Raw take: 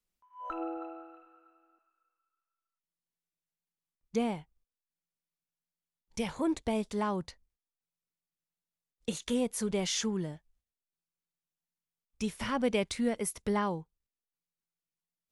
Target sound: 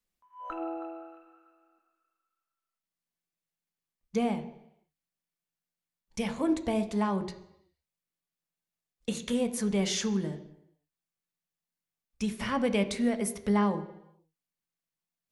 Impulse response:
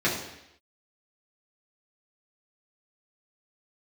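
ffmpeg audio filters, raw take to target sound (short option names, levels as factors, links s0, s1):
-filter_complex "[0:a]asplit=2[s0][s1];[1:a]atrim=start_sample=2205,highshelf=f=8500:g=-10[s2];[s1][s2]afir=irnorm=-1:irlink=0,volume=0.119[s3];[s0][s3]amix=inputs=2:normalize=0"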